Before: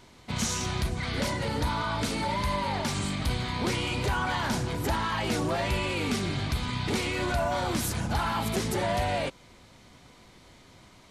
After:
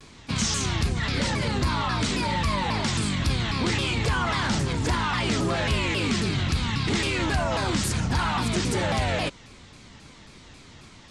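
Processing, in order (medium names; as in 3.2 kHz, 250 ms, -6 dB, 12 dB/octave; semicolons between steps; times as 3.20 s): steep low-pass 9.2 kHz 36 dB/octave; peaking EQ 650 Hz -6 dB 1.4 oct; in parallel at +2 dB: peak limiter -26 dBFS, peak gain reduction 7.5 dB; on the sum: vibrato with a chosen wave saw down 3.7 Hz, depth 250 cents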